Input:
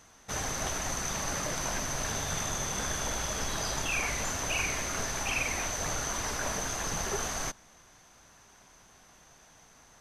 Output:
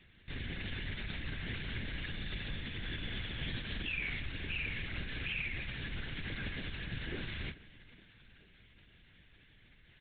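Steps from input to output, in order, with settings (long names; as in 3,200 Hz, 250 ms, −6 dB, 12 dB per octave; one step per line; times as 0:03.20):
Chebyshev band-stop filter 320–2,000 Hz, order 2
brickwall limiter −29 dBFS, peak gain reduction 9 dB
flanger 0.21 Hz, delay 9.9 ms, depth 8.7 ms, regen −65%
on a send: repeating echo 425 ms, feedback 58%, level −20 dB
on the sum: linear-prediction vocoder at 8 kHz whisper
level +5.5 dB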